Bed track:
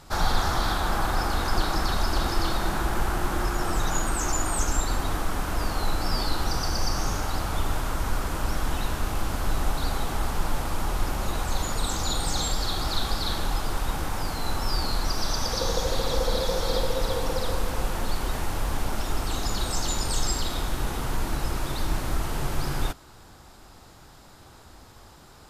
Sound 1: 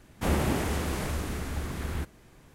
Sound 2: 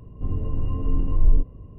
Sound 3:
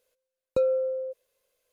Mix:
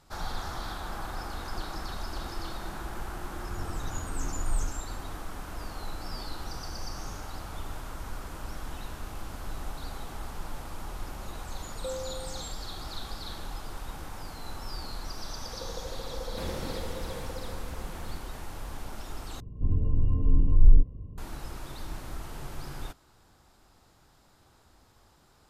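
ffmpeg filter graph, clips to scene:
-filter_complex "[2:a]asplit=2[a][b];[0:a]volume=-11.5dB[c];[b]lowshelf=f=370:g=11[d];[c]asplit=2[e][f];[e]atrim=end=19.404[g];[d]atrim=end=1.78,asetpts=PTS-STARTPTS,volume=-10dB[h];[f]atrim=start=21.176[i];[a]atrim=end=1.78,asetpts=PTS-STARTPTS,volume=-12.5dB,afade=t=in:d=0.004:c=hsin,afade=t=out:st=1.776:d=0.004:c=hsin,adelay=3270[j];[3:a]atrim=end=1.72,asetpts=PTS-STARTPTS,volume=-13dB,afade=t=in:d=0.004:c=hsin,afade=t=out:st=1.716:d=0.004:c=hsin,adelay=11280[k];[1:a]atrim=end=2.54,asetpts=PTS-STARTPTS,volume=-11dB,afade=t=in:d=0.004:c=hsin,afade=t=out:st=2.536:d=0.004:c=hsin,adelay=16150[l];[g][h]acrossfade=d=0.004:c1=hsin:c2=hsin[m];[m][i]acrossfade=d=0.004:c1=hsin:c2=hsin[n];[n][j][k][l]amix=inputs=4:normalize=0"

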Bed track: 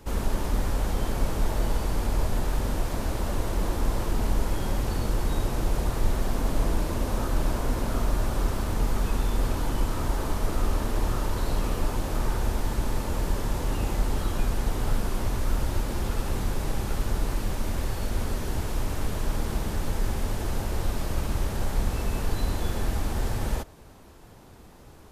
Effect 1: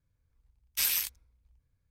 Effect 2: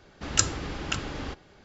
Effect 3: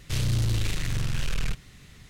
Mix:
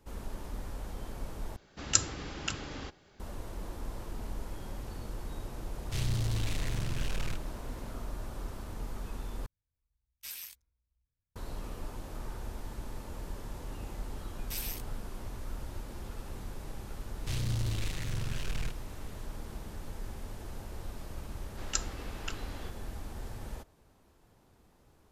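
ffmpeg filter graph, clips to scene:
-filter_complex "[2:a]asplit=2[a][b];[3:a]asplit=2[c][d];[1:a]asplit=2[e][f];[0:a]volume=-14dB[g];[a]highshelf=f=4.9k:g=6.5[h];[b]highpass=320[i];[g]asplit=3[j][k][l];[j]atrim=end=1.564[m];[h]atrim=end=1.64,asetpts=PTS-STARTPTS,volume=-6.5dB[n];[k]atrim=start=3.196:end=9.464[o];[e]atrim=end=1.9,asetpts=PTS-STARTPTS,volume=-15dB[p];[l]atrim=start=11.356[q];[c]atrim=end=2.09,asetpts=PTS-STARTPTS,volume=-6.5dB,afade=t=in:d=0.004:c=hsin,afade=t=out:st=2.086:d=0.004:c=hsin,adelay=5820[r];[f]atrim=end=1.9,asetpts=PTS-STARTPTS,volume=-11dB,afade=t=in:d=0.004:c=hsin,afade=t=out:st=1.896:d=0.004:c=hsin,adelay=13730[s];[d]atrim=end=2.09,asetpts=PTS-STARTPTS,volume=-7.5dB,afade=t=in:d=0.004:c=hsin,afade=t=out:st=2.086:d=0.004:c=hsin,adelay=17170[t];[i]atrim=end=1.64,asetpts=PTS-STARTPTS,volume=-10dB,afade=t=in:d=0.004:c=hsin,afade=t=out:st=1.636:d=0.004:c=hsin,adelay=21360[u];[m][n]acrossfade=d=0.004:c1=hsin:c2=hsin[v];[v][o]acrossfade=d=0.004:c1=hsin:c2=hsin[w];[w][p]acrossfade=d=0.004:c1=hsin:c2=hsin[x];[x][q]acrossfade=d=0.004:c1=hsin:c2=hsin[y];[y][r][s][t][u]amix=inputs=5:normalize=0"

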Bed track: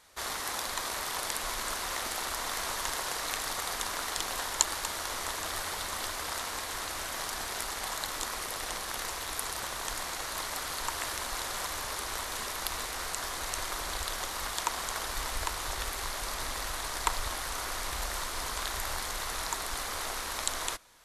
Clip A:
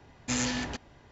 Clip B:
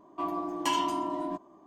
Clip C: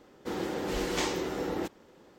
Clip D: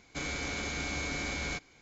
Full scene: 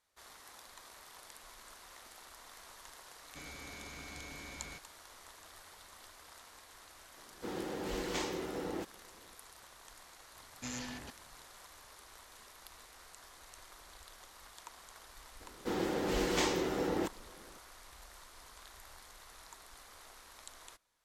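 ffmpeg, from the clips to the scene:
-filter_complex "[3:a]asplit=2[a][b];[0:a]volume=-20dB[c];[b]asoftclip=type=hard:threshold=-20.5dB[d];[4:a]atrim=end=1.81,asetpts=PTS-STARTPTS,volume=-13.5dB,afade=t=in:d=0.004:c=hsin,afade=t=out:st=1.806:d=0.004:c=hsin,adelay=3200[e];[a]atrim=end=2.18,asetpts=PTS-STARTPTS,volume=-6.5dB,afade=t=in:d=0.004:c=hsin,afade=t=out:st=2.176:d=0.004:c=hsin,adelay=7170[f];[1:a]atrim=end=1.11,asetpts=PTS-STARTPTS,volume=-12.5dB,afade=t=in:d=0.004:c=hsin,afade=t=out:st=1.106:d=0.004:c=hsin,adelay=455994S[g];[d]atrim=end=2.18,asetpts=PTS-STARTPTS,volume=-1dB,afade=t=in:d=0.004:c=hsin,afade=t=out:st=2.176:d=0.004:c=hsin,adelay=679140S[h];[c][e][f][g][h]amix=inputs=5:normalize=0"

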